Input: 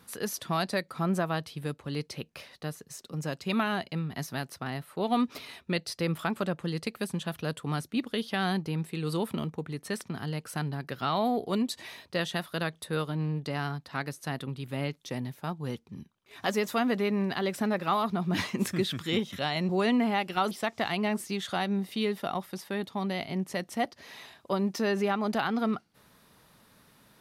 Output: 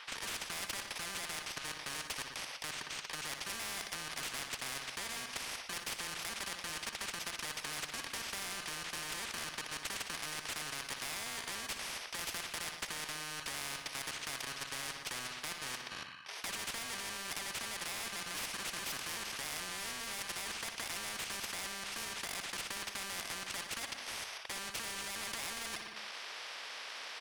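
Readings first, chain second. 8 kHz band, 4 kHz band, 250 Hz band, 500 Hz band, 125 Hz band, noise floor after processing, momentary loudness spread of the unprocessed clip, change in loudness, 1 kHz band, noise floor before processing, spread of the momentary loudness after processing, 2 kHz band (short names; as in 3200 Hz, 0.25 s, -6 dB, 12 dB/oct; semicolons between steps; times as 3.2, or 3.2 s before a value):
+5.5 dB, -1.0 dB, -24.0 dB, -18.5 dB, -22.5 dB, -49 dBFS, 9 LU, -8.0 dB, -11.5 dB, -63 dBFS, 2 LU, -3.5 dB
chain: FFT order left unsorted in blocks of 32 samples; tilt +1.5 dB/oct; AGC gain up to 6.5 dB; Butterworth band-pass 2000 Hz, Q 0.97; limiter -28.5 dBFS, peak gain reduction 11 dB; level quantiser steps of 11 dB; overdrive pedal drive 17 dB, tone 2000 Hz, clips at -31 dBFS; feedback echo 60 ms, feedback 59%, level -14 dB; spectral compressor 4:1; gain +7.5 dB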